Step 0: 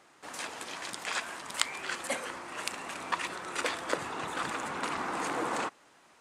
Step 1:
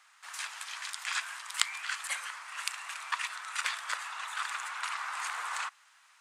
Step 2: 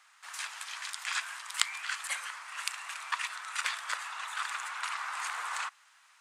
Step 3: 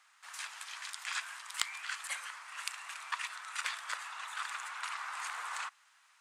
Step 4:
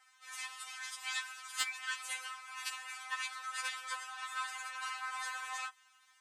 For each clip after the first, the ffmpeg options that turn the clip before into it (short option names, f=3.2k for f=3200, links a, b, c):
-af "highpass=f=1.1k:w=0.5412,highpass=f=1.1k:w=1.3066,volume=1dB"
-af anull
-af "asoftclip=type=tanh:threshold=-4dB,volume=-4dB"
-af "afftfilt=real='re*3.46*eq(mod(b,12),0)':imag='im*3.46*eq(mod(b,12),0)':win_size=2048:overlap=0.75,volume=2dB"